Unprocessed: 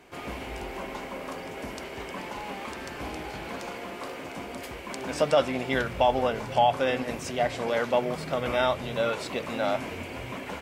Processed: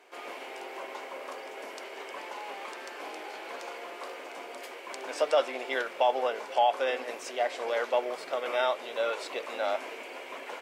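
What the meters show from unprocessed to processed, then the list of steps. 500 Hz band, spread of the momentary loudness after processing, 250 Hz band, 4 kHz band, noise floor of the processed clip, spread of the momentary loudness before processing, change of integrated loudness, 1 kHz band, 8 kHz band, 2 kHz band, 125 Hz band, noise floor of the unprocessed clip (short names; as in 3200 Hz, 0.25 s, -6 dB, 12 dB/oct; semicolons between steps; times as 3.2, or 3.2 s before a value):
-3.0 dB, 14 LU, -13.0 dB, -3.0 dB, -44 dBFS, 13 LU, -3.0 dB, -2.5 dB, -4.0 dB, -2.5 dB, under -30 dB, -40 dBFS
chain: HPF 380 Hz 24 dB/oct; high shelf 10000 Hz -5 dB; gain -2.5 dB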